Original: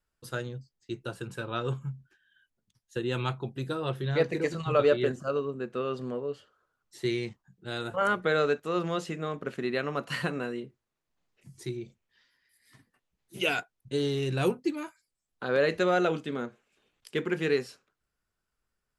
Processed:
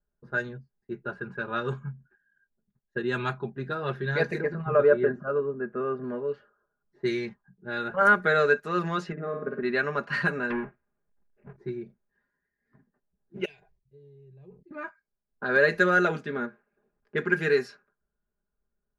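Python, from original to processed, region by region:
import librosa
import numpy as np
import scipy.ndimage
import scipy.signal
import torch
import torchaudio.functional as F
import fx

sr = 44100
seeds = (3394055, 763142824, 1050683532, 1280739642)

y = fx.chain(x, sr, fx.lowpass(hz=1400.0, slope=12),
    fx.notch(hz=910.0, q=15.0), at=(4.41, 6.04))
y = fx.chain(y, sr, fx.bandpass_q(hz=320.0, q=0.56),
    fx.room_flutter(wall_m=9.2, rt60_s=0.69), at=(9.12, 9.63))
y = fx.chain(y, sr, fx.halfwave_hold(),
    fx.env_lowpass_down(base_hz=1100.0, full_db=-30.5),
    fx.lowpass_res(hz=2700.0, q=2.8), at=(10.5, 11.56))
y = fx.chain(y, sr, fx.tone_stack(knobs='6-0-2'),
    fx.fixed_phaser(hz=590.0, stages=4),
    fx.sustainer(db_per_s=80.0), at=(13.45, 14.71))
y = fx.graphic_eq_31(y, sr, hz=(1600, 3150, 8000), db=(11, -8, -6))
y = fx.env_lowpass(y, sr, base_hz=640.0, full_db=-23.0)
y = y + 0.65 * np.pad(y, (int(4.9 * sr / 1000.0), 0))[:len(y)]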